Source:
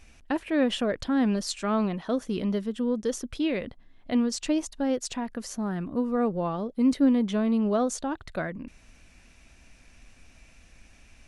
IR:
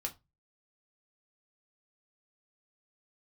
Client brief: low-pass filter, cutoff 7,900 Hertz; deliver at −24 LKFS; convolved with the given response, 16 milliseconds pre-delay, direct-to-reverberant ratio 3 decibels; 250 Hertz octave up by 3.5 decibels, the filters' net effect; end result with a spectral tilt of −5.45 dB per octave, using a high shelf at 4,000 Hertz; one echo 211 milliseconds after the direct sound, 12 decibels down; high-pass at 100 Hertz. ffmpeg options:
-filter_complex "[0:a]highpass=100,lowpass=7900,equalizer=frequency=250:width_type=o:gain=4,highshelf=frequency=4000:gain=4.5,aecho=1:1:211:0.251,asplit=2[link_01][link_02];[1:a]atrim=start_sample=2205,adelay=16[link_03];[link_02][link_03]afir=irnorm=-1:irlink=0,volume=-3dB[link_04];[link_01][link_04]amix=inputs=2:normalize=0,volume=-1.5dB"

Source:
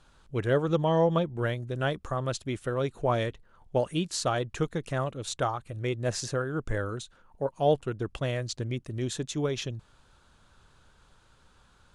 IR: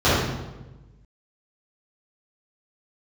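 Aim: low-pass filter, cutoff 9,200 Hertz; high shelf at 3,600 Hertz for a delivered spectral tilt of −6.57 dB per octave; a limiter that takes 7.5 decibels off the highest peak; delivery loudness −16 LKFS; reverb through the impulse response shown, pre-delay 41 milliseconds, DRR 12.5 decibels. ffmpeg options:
-filter_complex "[0:a]lowpass=9200,highshelf=frequency=3600:gain=-8.5,alimiter=limit=-20dB:level=0:latency=1,asplit=2[link_01][link_02];[1:a]atrim=start_sample=2205,adelay=41[link_03];[link_02][link_03]afir=irnorm=-1:irlink=0,volume=-35.5dB[link_04];[link_01][link_04]amix=inputs=2:normalize=0,volume=15dB"

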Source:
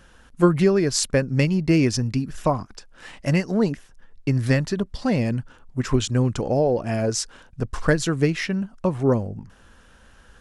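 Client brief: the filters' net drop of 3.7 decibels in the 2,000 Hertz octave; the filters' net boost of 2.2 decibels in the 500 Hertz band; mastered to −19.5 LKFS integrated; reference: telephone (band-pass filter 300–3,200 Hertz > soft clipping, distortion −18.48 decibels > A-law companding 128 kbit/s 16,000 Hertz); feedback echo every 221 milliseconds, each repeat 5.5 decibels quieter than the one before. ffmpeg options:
ffmpeg -i in.wav -af "highpass=300,lowpass=3200,equalizer=frequency=500:width_type=o:gain=4,equalizer=frequency=2000:width_type=o:gain=-4,aecho=1:1:221|442|663|884|1105|1326|1547:0.531|0.281|0.149|0.079|0.0419|0.0222|0.0118,asoftclip=threshold=-10.5dB,volume=5dB" -ar 16000 -c:a pcm_alaw out.wav

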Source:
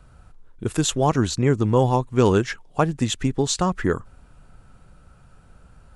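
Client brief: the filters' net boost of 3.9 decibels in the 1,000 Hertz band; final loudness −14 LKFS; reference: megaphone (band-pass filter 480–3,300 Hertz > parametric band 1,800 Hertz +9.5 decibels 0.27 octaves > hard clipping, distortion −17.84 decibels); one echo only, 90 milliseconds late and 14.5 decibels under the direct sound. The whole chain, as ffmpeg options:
ffmpeg -i in.wav -af "highpass=480,lowpass=3300,equalizer=frequency=1000:width_type=o:gain=5,equalizer=frequency=1800:width_type=o:width=0.27:gain=9.5,aecho=1:1:90:0.188,asoftclip=type=hard:threshold=-10.5dB,volume=10.5dB" out.wav

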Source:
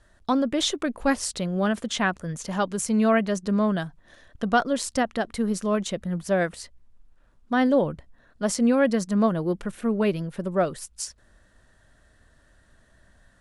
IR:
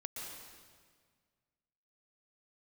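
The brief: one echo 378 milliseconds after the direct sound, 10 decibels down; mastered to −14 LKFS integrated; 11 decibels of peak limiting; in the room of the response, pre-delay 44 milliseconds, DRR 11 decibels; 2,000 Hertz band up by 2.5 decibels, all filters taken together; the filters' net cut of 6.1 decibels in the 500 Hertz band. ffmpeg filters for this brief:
-filter_complex "[0:a]equalizer=frequency=500:width_type=o:gain=-8,equalizer=frequency=2000:width_type=o:gain=4,alimiter=limit=-21.5dB:level=0:latency=1,aecho=1:1:378:0.316,asplit=2[link_01][link_02];[1:a]atrim=start_sample=2205,adelay=44[link_03];[link_02][link_03]afir=irnorm=-1:irlink=0,volume=-10dB[link_04];[link_01][link_04]amix=inputs=2:normalize=0,volume=16.5dB"

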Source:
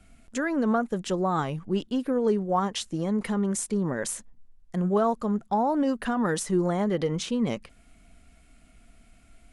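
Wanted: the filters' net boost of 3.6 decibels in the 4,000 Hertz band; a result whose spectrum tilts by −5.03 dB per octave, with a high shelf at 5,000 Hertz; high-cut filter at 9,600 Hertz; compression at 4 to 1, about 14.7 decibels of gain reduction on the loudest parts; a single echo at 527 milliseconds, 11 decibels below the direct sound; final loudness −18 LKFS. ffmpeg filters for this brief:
ffmpeg -i in.wav -af "lowpass=9600,equalizer=frequency=4000:width_type=o:gain=7.5,highshelf=frequency=5000:gain=-6,acompressor=threshold=-38dB:ratio=4,aecho=1:1:527:0.282,volume=21.5dB" out.wav

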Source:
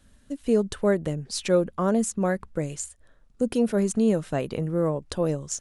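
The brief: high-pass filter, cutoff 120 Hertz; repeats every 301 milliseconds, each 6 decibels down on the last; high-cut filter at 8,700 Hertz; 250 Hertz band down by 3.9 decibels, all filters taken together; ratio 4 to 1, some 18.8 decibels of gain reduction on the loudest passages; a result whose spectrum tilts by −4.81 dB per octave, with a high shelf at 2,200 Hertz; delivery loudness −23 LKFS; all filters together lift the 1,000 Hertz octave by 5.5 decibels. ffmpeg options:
ffmpeg -i in.wav -af "highpass=120,lowpass=8700,equalizer=frequency=250:width_type=o:gain=-5,equalizer=frequency=1000:width_type=o:gain=8.5,highshelf=frequency=2200:gain=-4.5,acompressor=threshold=-40dB:ratio=4,aecho=1:1:301|602|903|1204|1505|1806:0.501|0.251|0.125|0.0626|0.0313|0.0157,volume=18dB" out.wav

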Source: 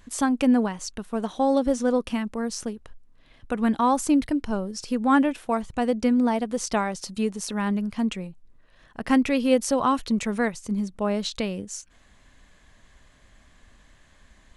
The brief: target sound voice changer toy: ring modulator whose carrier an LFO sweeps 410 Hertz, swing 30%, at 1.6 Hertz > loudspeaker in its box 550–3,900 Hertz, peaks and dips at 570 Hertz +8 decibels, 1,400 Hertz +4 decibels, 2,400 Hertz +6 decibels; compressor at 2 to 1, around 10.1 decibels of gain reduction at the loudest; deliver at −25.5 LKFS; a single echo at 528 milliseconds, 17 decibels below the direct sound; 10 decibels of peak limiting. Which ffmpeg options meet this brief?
ffmpeg -i in.wav -af "acompressor=threshold=-34dB:ratio=2,alimiter=level_in=3.5dB:limit=-24dB:level=0:latency=1,volume=-3.5dB,aecho=1:1:528:0.141,aeval=exprs='val(0)*sin(2*PI*410*n/s+410*0.3/1.6*sin(2*PI*1.6*n/s))':channel_layout=same,highpass=550,equalizer=frequency=570:width_type=q:width=4:gain=8,equalizer=frequency=1400:width_type=q:width=4:gain=4,equalizer=frequency=2400:width_type=q:width=4:gain=6,lowpass=frequency=3900:width=0.5412,lowpass=frequency=3900:width=1.3066,volume=14.5dB" out.wav

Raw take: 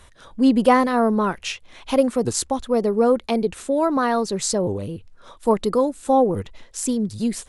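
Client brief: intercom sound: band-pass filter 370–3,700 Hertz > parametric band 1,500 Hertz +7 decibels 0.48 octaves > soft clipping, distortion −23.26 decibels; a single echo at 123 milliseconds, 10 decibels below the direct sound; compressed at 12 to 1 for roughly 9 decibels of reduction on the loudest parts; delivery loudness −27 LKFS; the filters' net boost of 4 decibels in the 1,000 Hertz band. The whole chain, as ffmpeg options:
ffmpeg -i in.wav -af "equalizer=frequency=1000:width_type=o:gain=4,acompressor=threshold=-17dB:ratio=12,highpass=370,lowpass=3700,equalizer=frequency=1500:width_type=o:width=0.48:gain=7,aecho=1:1:123:0.316,asoftclip=threshold=-11dB,volume=-1dB" out.wav

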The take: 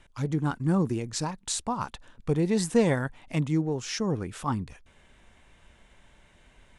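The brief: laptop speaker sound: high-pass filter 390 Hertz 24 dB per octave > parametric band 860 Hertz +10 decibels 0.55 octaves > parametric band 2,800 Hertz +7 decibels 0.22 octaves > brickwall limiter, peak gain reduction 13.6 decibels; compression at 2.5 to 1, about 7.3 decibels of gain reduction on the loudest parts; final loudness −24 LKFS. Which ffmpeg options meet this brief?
ffmpeg -i in.wav -af "acompressor=threshold=-27dB:ratio=2.5,highpass=frequency=390:width=0.5412,highpass=frequency=390:width=1.3066,equalizer=frequency=860:width_type=o:width=0.55:gain=10,equalizer=frequency=2800:width_type=o:width=0.22:gain=7,volume=14.5dB,alimiter=limit=-13dB:level=0:latency=1" out.wav

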